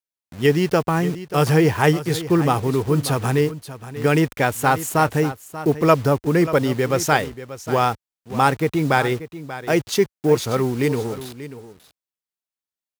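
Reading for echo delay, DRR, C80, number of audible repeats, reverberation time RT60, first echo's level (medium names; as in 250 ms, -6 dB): 586 ms, no reverb, no reverb, 1, no reverb, -14.0 dB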